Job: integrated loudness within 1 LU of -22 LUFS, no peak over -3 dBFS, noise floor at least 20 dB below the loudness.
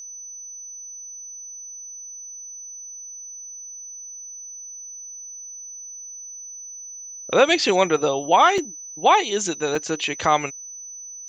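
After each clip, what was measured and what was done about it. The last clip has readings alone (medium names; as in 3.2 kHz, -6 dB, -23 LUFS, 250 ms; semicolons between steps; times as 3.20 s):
dropouts 2; longest dropout 2.4 ms; steady tone 6 kHz; tone level -35 dBFS; loudness -20.0 LUFS; peak level -4.0 dBFS; loudness target -22.0 LUFS
-> interpolate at 8.58/9.75 s, 2.4 ms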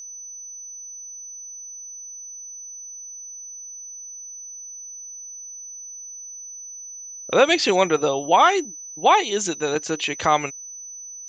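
dropouts 0; steady tone 6 kHz; tone level -35 dBFS
-> band-stop 6 kHz, Q 30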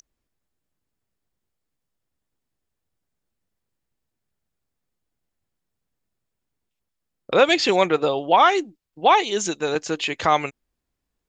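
steady tone not found; loudness -20.0 LUFS; peak level -4.0 dBFS; loudness target -22.0 LUFS
-> trim -2 dB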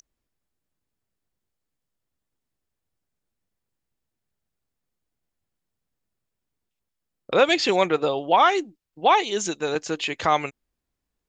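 loudness -22.0 LUFS; peak level -6.0 dBFS; noise floor -83 dBFS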